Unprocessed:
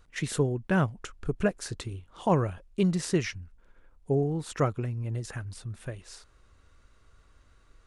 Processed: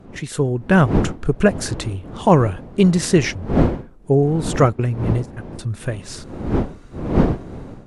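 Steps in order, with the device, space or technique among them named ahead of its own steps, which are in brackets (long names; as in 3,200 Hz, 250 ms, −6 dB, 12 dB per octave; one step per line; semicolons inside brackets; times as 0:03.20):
0:04.73–0:05.59: noise gate −32 dBFS, range −30 dB
smartphone video outdoors (wind on the microphone 310 Hz; automatic gain control gain up to 12 dB; level +1 dB; AAC 96 kbit/s 32,000 Hz)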